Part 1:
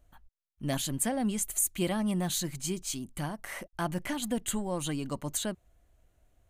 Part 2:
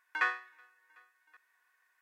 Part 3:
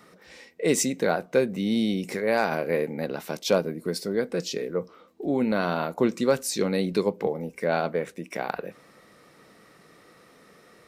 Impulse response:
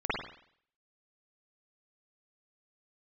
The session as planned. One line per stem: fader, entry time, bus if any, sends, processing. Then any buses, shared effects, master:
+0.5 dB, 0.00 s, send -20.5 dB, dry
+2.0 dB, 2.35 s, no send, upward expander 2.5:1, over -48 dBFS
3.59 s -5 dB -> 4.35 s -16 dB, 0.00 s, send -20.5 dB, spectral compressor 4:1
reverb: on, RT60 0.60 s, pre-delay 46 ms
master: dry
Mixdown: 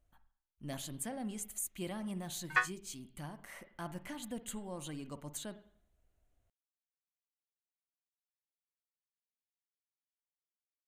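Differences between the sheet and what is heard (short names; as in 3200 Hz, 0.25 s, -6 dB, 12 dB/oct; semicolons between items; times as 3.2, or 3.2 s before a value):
stem 1 +0.5 dB -> -11.5 dB; stem 3: muted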